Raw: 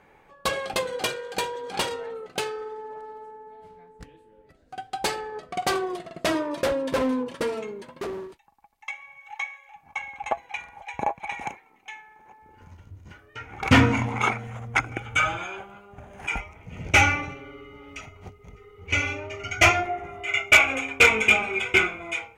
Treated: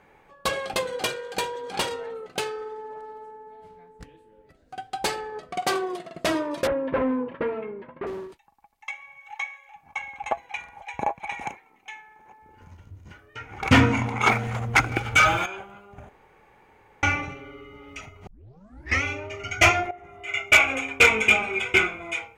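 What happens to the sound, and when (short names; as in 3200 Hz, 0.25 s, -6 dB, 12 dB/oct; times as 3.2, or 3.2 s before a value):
5.57–6.15 HPF 150 Hz
6.67–8.07 LPF 2300 Hz 24 dB/oct
13–13.63 echo throw 0.46 s, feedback 45%, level -4.5 dB
14.26–15.46 sample leveller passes 2
16.09–17.03 room tone
18.27 tape start 0.76 s
19.91–20.62 fade in, from -14 dB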